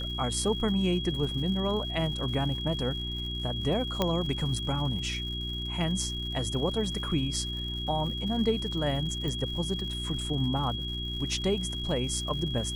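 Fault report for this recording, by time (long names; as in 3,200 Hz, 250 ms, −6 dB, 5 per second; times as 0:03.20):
surface crackle 140 per second −39 dBFS
mains hum 60 Hz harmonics 6 −36 dBFS
whistle 3,300 Hz −35 dBFS
0:04.02: click −12 dBFS
0:09.28: click −21 dBFS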